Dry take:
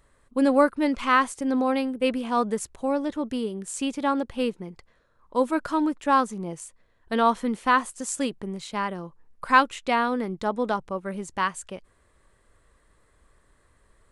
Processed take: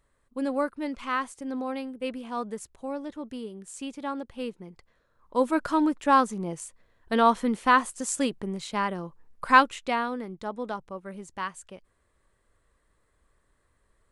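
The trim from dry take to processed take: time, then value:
4.35 s -8.5 dB
5.62 s +0.5 dB
9.57 s +0.5 dB
10.24 s -7.5 dB

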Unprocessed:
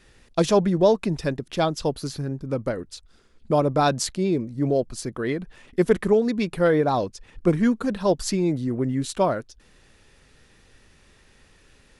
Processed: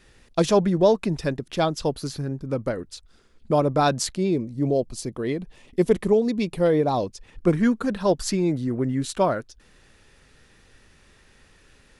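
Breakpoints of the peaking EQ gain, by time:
peaking EQ 1.5 kHz 0.71 oct
4.17 s 0 dB
4.63 s -9.5 dB
6.84 s -9.5 dB
7.53 s +2 dB

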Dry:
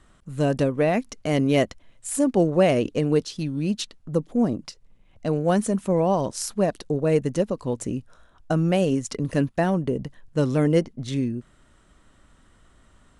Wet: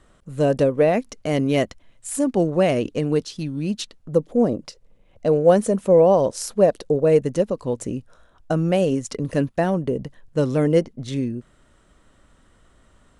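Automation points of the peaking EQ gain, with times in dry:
peaking EQ 510 Hz 0.74 oct
0.87 s +7 dB
1.57 s 0 dB
3.69 s 0 dB
4.46 s +10.5 dB
6.86 s +10.5 dB
7.31 s +4 dB

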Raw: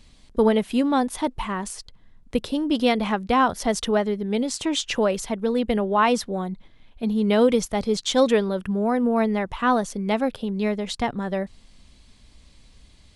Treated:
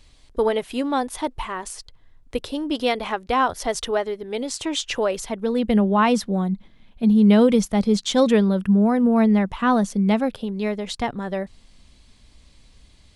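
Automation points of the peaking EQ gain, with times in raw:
peaking EQ 200 Hz 0.5 oct
4.85 s -13.5 dB
5.36 s -3 dB
5.77 s +9 dB
10.07 s +9 dB
10.53 s -1.5 dB

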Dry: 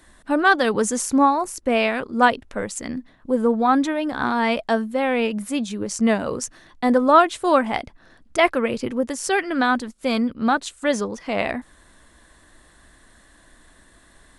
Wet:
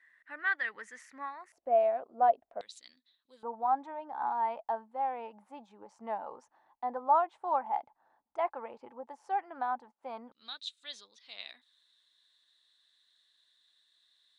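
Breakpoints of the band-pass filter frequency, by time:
band-pass filter, Q 10
1.9 kHz
from 1.52 s 690 Hz
from 2.61 s 3.9 kHz
from 3.43 s 850 Hz
from 10.32 s 3.8 kHz

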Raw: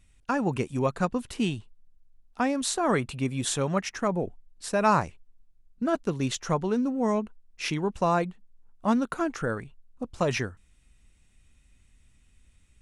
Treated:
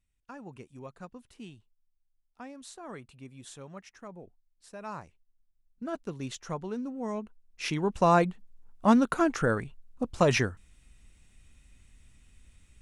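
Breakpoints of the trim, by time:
4.86 s -18.5 dB
5.94 s -9 dB
7.09 s -9 dB
8.15 s +3 dB

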